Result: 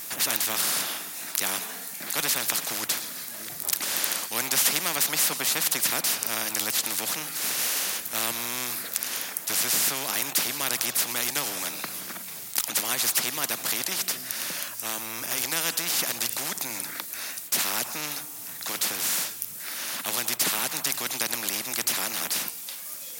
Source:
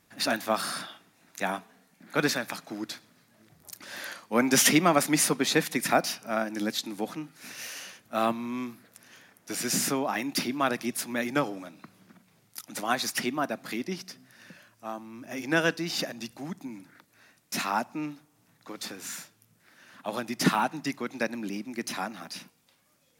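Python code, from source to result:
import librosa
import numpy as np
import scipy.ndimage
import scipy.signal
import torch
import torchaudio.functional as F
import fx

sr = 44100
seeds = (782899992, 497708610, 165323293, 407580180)

y = fx.riaa(x, sr, side='recording')
y = fx.spectral_comp(y, sr, ratio=4.0)
y = y * librosa.db_to_amplitude(-7.0)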